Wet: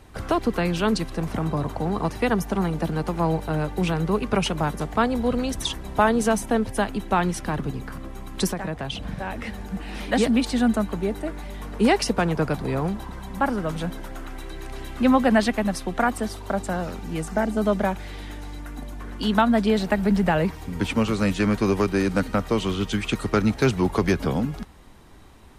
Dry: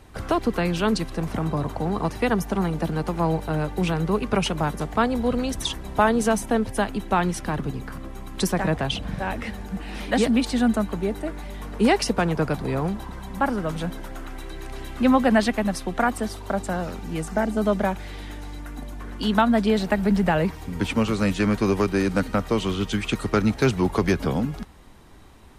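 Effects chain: 8.52–9.58 s: compression 6:1, threshold -26 dBFS, peak gain reduction 8 dB

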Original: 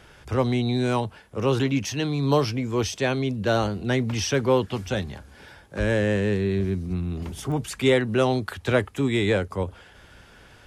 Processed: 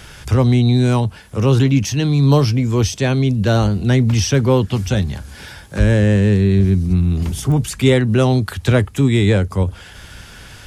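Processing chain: tone controls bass +11 dB, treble +5 dB; tape noise reduction on one side only encoder only; trim +3 dB

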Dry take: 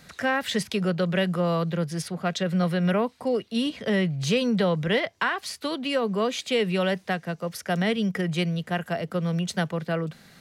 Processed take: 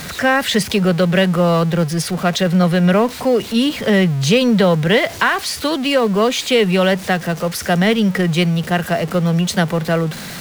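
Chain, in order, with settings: jump at every zero crossing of -34.5 dBFS; trim +9 dB

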